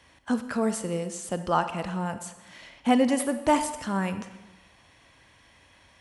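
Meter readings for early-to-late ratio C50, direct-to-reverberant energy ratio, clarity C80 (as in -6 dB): 11.0 dB, 10.0 dB, 13.0 dB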